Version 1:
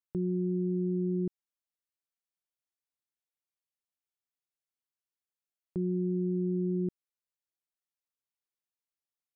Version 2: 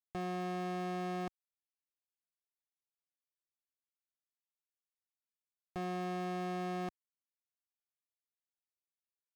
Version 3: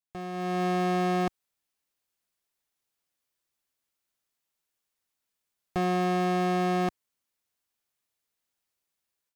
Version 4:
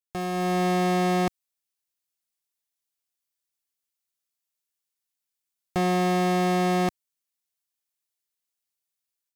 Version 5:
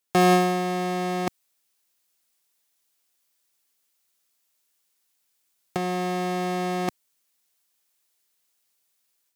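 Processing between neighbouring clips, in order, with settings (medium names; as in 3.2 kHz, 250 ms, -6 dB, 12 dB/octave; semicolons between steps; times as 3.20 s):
waveshaping leveller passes 5; peaking EQ 160 Hz -7.5 dB 2.3 oct; trim -6 dB
level rider gain up to 12 dB
treble shelf 2.8 kHz +10 dB; waveshaping leveller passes 3; trim -4.5 dB
compressor with a negative ratio -28 dBFS, ratio -0.5; high-pass 160 Hz; trim +6.5 dB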